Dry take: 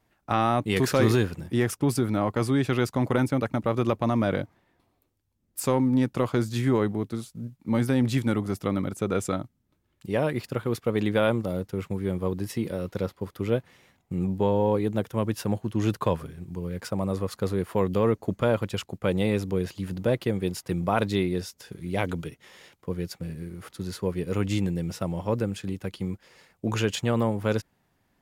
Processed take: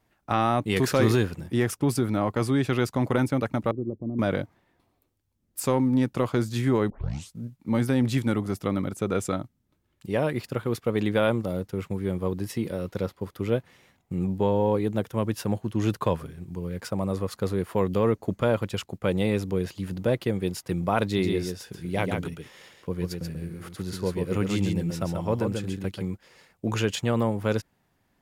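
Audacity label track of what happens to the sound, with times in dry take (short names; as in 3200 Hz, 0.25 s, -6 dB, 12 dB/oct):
3.710000	4.190000	ladder low-pass 430 Hz, resonance 35%
6.900000	6.900000	tape start 0.42 s
21.040000	26.050000	echo 0.136 s -4.5 dB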